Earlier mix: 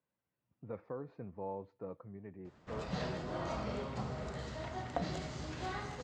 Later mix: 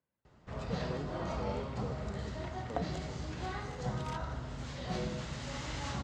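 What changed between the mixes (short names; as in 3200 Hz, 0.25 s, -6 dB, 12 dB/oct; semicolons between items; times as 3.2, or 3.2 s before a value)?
background: entry -2.20 s; master: add low shelf 84 Hz +9 dB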